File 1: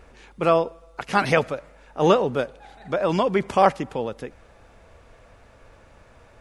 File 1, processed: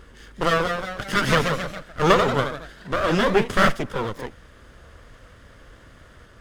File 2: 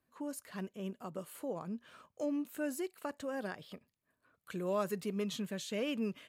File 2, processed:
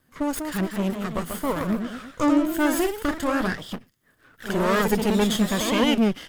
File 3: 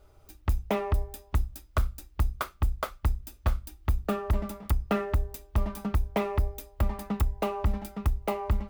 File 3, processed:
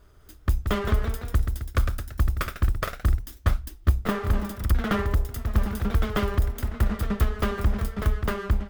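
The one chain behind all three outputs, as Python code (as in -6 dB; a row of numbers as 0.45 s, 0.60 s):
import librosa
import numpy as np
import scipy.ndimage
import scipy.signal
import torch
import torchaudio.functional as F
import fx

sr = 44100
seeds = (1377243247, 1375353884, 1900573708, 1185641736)

y = fx.lower_of_two(x, sr, delay_ms=0.62)
y = fx.echo_pitch(y, sr, ms=206, semitones=1, count=3, db_per_echo=-6.0)
y = y * 10.0 ** (-24 / 20.0) / np.sqrt(np.mean(np.square(y)))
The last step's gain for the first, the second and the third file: +3.5 dB, +16.5 dB, +3.5 dB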